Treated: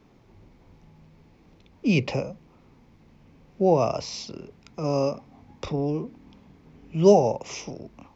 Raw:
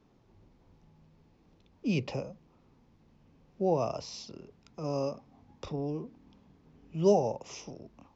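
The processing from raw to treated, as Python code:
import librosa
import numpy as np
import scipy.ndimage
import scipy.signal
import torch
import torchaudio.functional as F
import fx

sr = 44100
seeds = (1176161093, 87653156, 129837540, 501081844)

y = fx.peak_eq(x, sr, hz=2200.0, db=5.5, octaves=0.37)
y = F.gain(torch.from_numpy(y), 8.0).numpy()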